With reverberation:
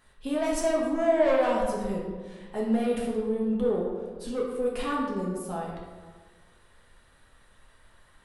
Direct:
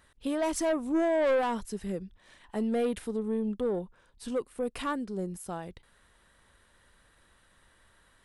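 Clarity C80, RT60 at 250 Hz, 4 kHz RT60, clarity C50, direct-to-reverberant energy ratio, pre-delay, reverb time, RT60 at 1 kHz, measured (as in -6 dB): 4.0 dB, 1.5 s, 0.85 s, 1.5 dB, -4.0 dB, 5 ms, 1.4 s, 1.4 s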